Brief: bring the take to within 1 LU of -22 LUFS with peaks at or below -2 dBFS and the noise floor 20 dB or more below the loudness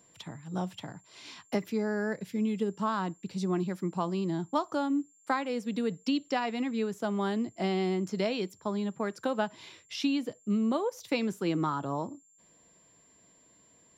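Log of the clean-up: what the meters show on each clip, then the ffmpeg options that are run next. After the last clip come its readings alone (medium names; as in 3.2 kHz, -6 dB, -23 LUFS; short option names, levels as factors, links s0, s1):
steady tone 7.3 kHz; tone level -61 dBFS; loudness -32.0 LUFS; peak level -15.5 dBFS; loudness target -22.0 LUFS
-> -af "bandreject=f=7300:w=30"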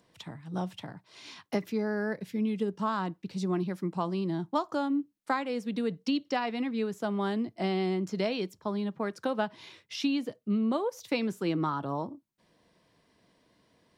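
steady tone not found; loudness -32.0 LUFS; peak level -15.5 dBFS; loudness target -22.0 LUFS
-> -af "volume=3.16"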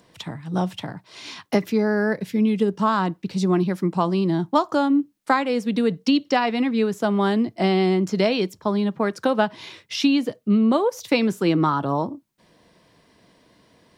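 loudness -22.0 LUFS; peak level -5.5 dBFS; noise floor -61 dBFS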